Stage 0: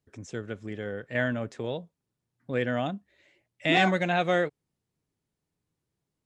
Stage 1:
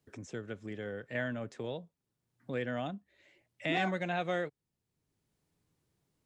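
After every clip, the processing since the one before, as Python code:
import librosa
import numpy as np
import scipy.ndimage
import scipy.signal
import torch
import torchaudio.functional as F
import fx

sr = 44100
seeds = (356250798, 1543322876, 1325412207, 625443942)

y = fx.band_squash(x, sr, depth_pct=40)
y = y * librosa.db_to_amplitude(-7.5)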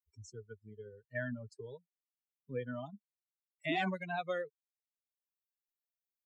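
y = fx.bin_expand(x, sr, power=3.0)
y = y * librosa.db_to_amplitude(1.5)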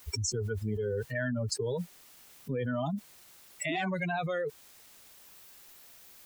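y = fx.env_flatten(x, sr, amount_pct=100)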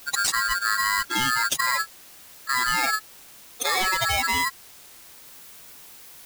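y = x * np.sign(np.sin(2.0 * np.pi * 1500.0 * np.arange(len(x)) / sr))
y = y * librosa.db_to_amplitude(8.5)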